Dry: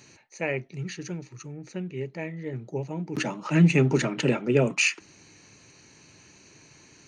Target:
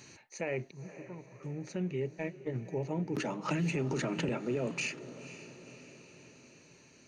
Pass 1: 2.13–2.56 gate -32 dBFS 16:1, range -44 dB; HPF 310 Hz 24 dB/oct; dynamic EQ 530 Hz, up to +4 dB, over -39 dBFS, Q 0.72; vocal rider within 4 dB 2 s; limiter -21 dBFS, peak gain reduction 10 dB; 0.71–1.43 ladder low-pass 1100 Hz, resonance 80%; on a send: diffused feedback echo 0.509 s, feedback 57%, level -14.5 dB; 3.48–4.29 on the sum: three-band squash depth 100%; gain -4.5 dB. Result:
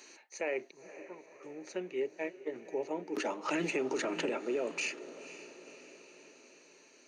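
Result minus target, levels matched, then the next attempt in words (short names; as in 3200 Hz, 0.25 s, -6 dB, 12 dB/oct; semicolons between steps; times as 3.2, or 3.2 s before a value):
250 Hz band -3.0 dB
2.13–2.56 gate -32 dBFS 16:1, range -44 dB; dynamic EQ 530 Hz, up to +4 dB, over -39 dBFS, Q 0.72; vocal rider within 4 dB 2 s; limiter -21 dBFS, peak gain reduction 13 dB; 0.71–1.43 ladder low-pass 1100 Hz, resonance 80%; on a send: diffused feedback echo 0.509 s, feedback 57%, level -14.5 dB; 3.48–4.29 on the sum: three-band squash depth 100%; gain -4.5 dB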